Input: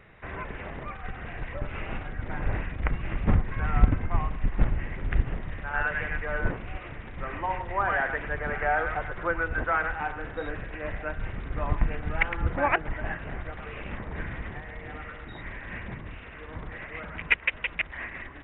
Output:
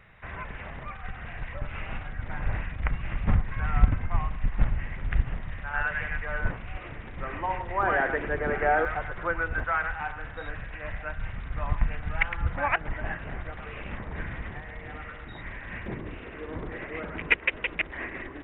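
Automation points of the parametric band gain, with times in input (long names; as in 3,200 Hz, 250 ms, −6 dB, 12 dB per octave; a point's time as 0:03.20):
parametric band 360 Hz 1.3 octaves
−8.5 dB
from 0:06.77 0 dB
from 0:07.83 +8.5 dB
from 0:08.85 −3 dB
from 0:09.60 −11 dB
from 0:12.81 −2 dB
from 0:15.86 +10 dB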